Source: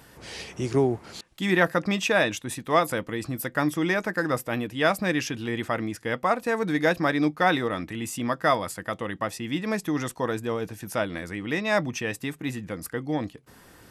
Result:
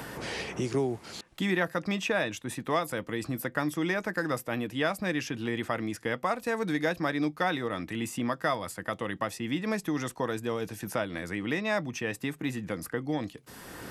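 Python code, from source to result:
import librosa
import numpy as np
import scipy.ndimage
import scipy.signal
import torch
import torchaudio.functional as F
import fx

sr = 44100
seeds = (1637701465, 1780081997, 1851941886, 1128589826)

y = fx.band_squash(x, sr, depth_pct=70)
y = F.gain(torch.from_numpy(y), -5.0).numpy()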